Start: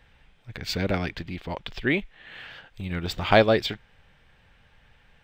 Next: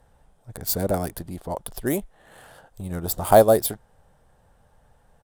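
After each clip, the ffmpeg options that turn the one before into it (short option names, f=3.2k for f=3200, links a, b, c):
-af "adynamicsmooth=sensitivity=8:basefreq=5.6k,firequalizer=gain_entry='entry(320,0);entry(640,5);entry(2300,-25);entry(10000,8)':delay=0.05:min_phase=1,crystalizer=i=6.5:c=0"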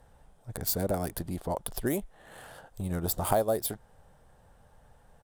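-af "acompressor=threshold=-27dB:ratio=3"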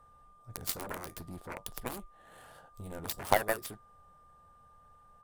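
-af "flanger=delay=9.1:depth=3.7:regen=-61:speed=0.55:shape=sinusoidal,aeval=exprs='0.2*(cos(1*acos(clip(val(0)/0.2,-1,1)))-cos(1*PI/2))+0.0398*(cos(7*acos(clip(val(0)/0.2,-1,1)))-cos(7*PI/2))':c=same,aeval=exprs='val(0)+0.000631*sin(2*PI*1200*n/s)':c=same,volume=5.5dB"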